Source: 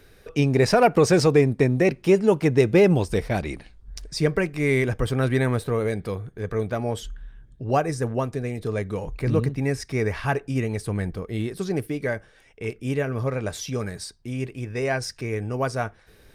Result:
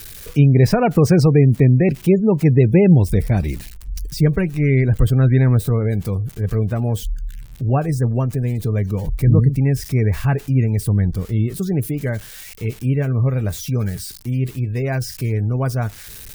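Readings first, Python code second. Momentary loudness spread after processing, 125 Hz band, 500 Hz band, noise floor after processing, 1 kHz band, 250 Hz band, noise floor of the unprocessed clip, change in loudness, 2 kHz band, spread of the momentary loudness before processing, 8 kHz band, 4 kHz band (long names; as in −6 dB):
13 LU, +11.0 dB, +0.5 dB, −38 dBFS, −1.5 dB, +6.5 dB, −54 dBFS, +6.0 dB, −2.0 dB, 14 LU, +2.5 dB, can't be measured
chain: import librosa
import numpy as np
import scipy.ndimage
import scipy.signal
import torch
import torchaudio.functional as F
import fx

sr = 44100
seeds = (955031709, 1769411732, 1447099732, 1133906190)

y = x + 0.5 * 10.0 ** (-23.0 / 20.0) * np.diff(np.sign(x), prepend=np.sign(x[:1]))
y = fx.spec_gate(y, sr, threshold_db=-30, keep='strong')
y = fx.bass_treble(y, sr, bass_db=14, treble_db=-3)
y = y * 10.0 ** (-1.5 / 20.0)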